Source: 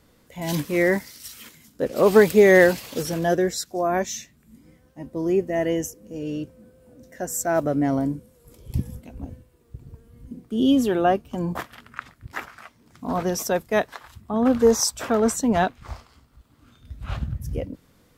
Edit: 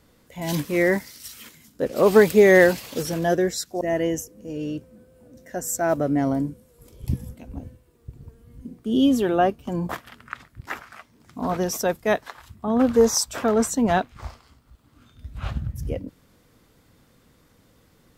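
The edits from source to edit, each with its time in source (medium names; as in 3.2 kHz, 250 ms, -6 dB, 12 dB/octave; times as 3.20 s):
3.81–5.47 s: delete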